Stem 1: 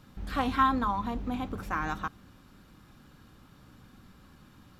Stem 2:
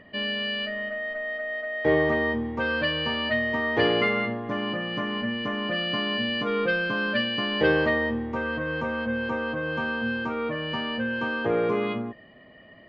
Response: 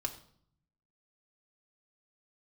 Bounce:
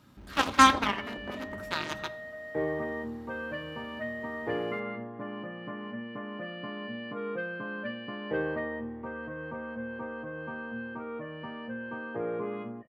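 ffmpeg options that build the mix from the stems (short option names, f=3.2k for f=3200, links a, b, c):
-filter_complex "[0:a]aeval=exprs='0.237*(cos(1*acos(clip(val(0)/0.237,-1,1)))-cos(1*PI/2))+0.0473*(cos(7*acos(clip(val(0)/0.237,-1,1)))-cos(7*PI/2))':c=same,volume=1.5dB,asplit=2[a][b];[b]volume=-3dB[c];[1:a]lowpass=1.7k,adelay=700,volume=-9dB[d];[2:a]atrim=start_sample=2205[e];[c][e]afir=irnorm=-1:irlink=0[f];[a][d][f]amix=inputs=3:normalize=0,highpass=85"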